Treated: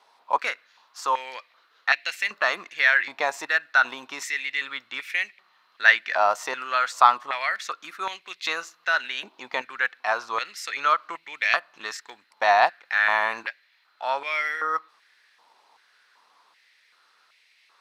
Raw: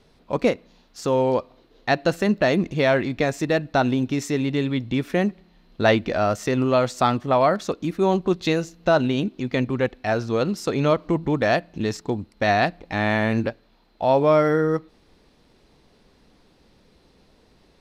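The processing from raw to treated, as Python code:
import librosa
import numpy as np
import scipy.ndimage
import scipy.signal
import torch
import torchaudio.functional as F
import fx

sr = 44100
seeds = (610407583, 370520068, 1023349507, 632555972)

y = fx.filter_held_highpass(x, sr, hz=2.6, low_hz=920.0, high_hz=2200.0)
y = y * librosa.db_to_amplitude(-1.0)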